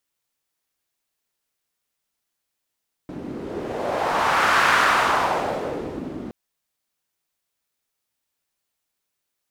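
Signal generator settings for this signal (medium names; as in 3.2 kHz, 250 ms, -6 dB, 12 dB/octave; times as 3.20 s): wind-like swept noise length 3.22 s, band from 270 Hz, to 1.4 kHz, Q 1.9, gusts 1, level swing 16 dB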